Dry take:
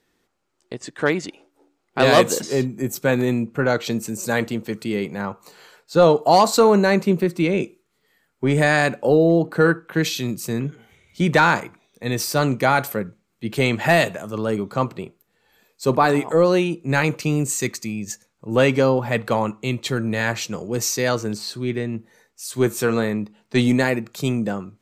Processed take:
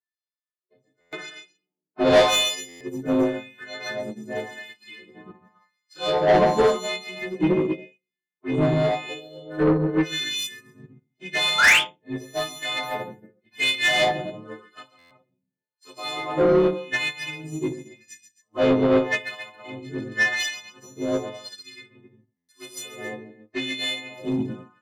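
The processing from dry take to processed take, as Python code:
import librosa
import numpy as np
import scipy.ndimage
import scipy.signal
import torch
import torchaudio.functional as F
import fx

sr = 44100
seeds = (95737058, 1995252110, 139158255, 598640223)

p1 = fx.freq_snap(x, sr, grid_st=3)
p2 = fx.low_shelf(p1, sr, hz=67.0, db=-5.0)
p3 = fx.env_flanger(p2, sr, rest_ms=2.2, full_db=-14.5)
p4 = p3 + fx.echo_multitap(p3, sr, ms=(140, 271), db=(-6.0, -7.0), dry=0)
p5 = fx.spec_paint(p4, sr, seeds[0], shape='rise', start_s=11.58, length_s=0.24, low_hz=1300.0, high_hz=3700.0, level_db=-13.0)
p6 = fx.room_shoebox(p5, sr, seeds[1], volume_m3=540.0, walls='furnished', distance_m=3.1)
p7 = fx.filter_lfo_bandpass(p6, sr, shape='sine', hz=0.89, low_hz=310.0, high_hz=3500.0, q=0.86)
p8 = 10.0 ** (-14.0 / 20.0) * np.tanh(p7 / 10.0 ** (-14.0 / 20.0))
p9 = fx.buffer_glitch(p8, sr, at_s=(1.0, 2.68, 14.98, 22.36), block=512, repeats=10)
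p10 = fx.upward_expand(p9, sr, threshold_db=-41.0, expansion=2.5)
y = F.gain(torch.from_numpy(p10), 4.0).numpy()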